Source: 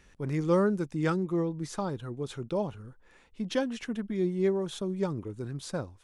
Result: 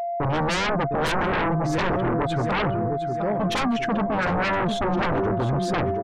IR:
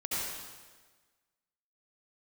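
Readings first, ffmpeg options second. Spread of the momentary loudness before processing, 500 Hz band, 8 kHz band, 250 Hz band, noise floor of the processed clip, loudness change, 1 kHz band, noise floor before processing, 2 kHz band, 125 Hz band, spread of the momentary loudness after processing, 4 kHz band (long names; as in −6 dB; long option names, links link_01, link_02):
11 LU, +6.0 dB, +6.5 dB, +5.0 dB, −28 dBFS, +7.5 dB, +16.0 dB, −60 dBFS, +16.0 dB, +7.5 dB, 2 LU, +12.5 dB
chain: -af "afftdn=noise_reduction=29:noise_floor=-48,agate=range=-43dB:threshold=-50dB:ratio=16:detection=peak,lowpass=frequency=3200:poles=1,bandreject=frequency=50:width_type=h:width=6,bandreject=frequency=100:width_type=h:width=6,aecho=1:1:708|1416|2124|2832:0.282|0.121|0.0521|0.0224,aeval=exprs='val(0)+0.00794*sin(2*PI*690*n/s)':channel_layout=same,aeval=exprs='0.2*sin(PI/2*8.91*val(0)/0.2)':channel_layout=same,adynamicequalizer=threshold=0.02:dfrequency=2500:dqfactor=0.7:tfrequency=2500:tqfactor=0.7:attack=5:release=100:ratio=0.375:range=2:mode=cutabove:tftype=highshelf,volume=-5.5dB"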